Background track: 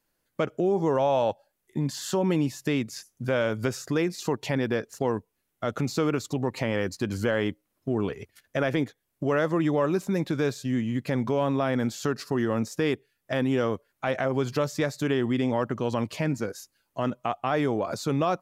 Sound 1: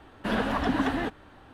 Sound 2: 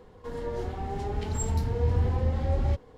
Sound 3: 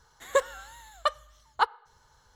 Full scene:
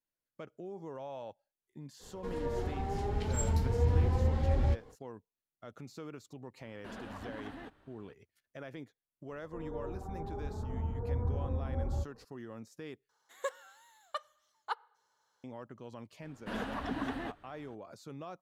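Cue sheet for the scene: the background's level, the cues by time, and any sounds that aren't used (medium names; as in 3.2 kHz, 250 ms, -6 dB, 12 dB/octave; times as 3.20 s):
background track -20 dB
1.99 s: add 2 -2.5 dB, fades 0.05 s
6.60 s: add 1 -14 dB + compression 2:1, threshold -31 dBFS
9.28 s: add 2 -8.5 dB + steep low-pass 1.4 kHz
13.09 s: replace with 3 -12.5 dB + high-pass 340 Hz
16.22 s: add 1 -10.5 dB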